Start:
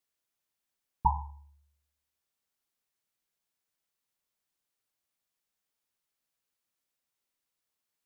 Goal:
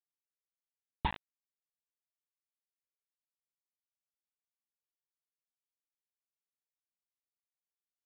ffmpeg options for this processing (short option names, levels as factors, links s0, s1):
-af "acompressor=threshold=0.01:ratio=10,aresample=8000,acrusher=bits=6:mix=0:aa=0.000001,aresample=44100,volume=2.82"